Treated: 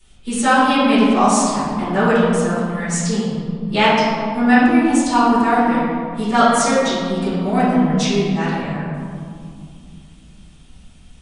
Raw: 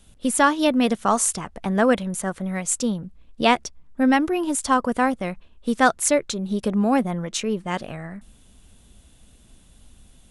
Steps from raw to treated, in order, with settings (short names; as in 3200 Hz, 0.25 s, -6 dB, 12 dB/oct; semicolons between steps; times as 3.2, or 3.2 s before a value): high shelf 2500 Hz +10.5 dB; reverb RT60 2.2 s, pre-delay 3 ms, DRR -16 dB; speed mistake 48 kHz file played as 44.1 kHz; gain -14.5 dB